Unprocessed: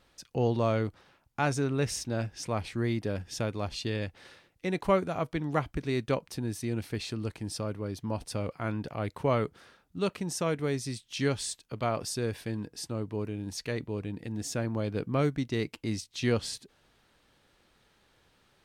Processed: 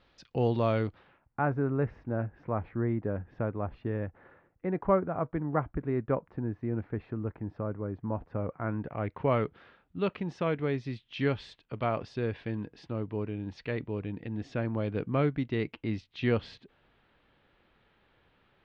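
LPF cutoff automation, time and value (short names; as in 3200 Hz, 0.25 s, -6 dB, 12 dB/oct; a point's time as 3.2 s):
LPF 24 dB/oct
0.87 s 4300 Hz
1.42 s 1600 Hz
8.52 s 1600 Hz
9.44 s 3200 Hz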